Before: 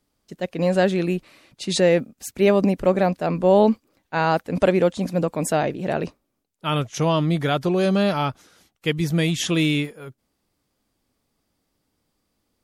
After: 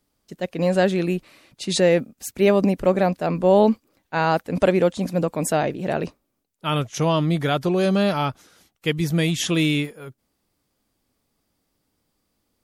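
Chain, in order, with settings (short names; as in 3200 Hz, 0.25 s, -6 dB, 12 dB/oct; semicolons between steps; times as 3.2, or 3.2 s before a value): high shelf 12000 Hz +5 dB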